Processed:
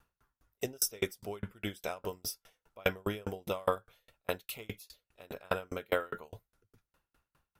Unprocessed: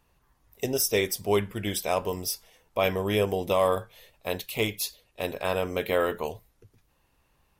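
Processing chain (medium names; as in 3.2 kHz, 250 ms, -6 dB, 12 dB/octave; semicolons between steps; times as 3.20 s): peaking EQ 1.4 kHz +12.5 dB 0.24 oct; sawtooth tremolo in dB decaying 4.9 Hz, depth 37 dB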